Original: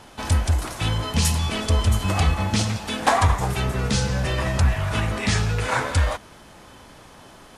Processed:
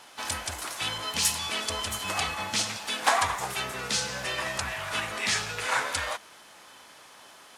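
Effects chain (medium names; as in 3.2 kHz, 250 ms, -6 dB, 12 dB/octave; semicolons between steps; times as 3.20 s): high-pass 1.3 kHz 6 dB/octave; harmony voices +5 st -15 dB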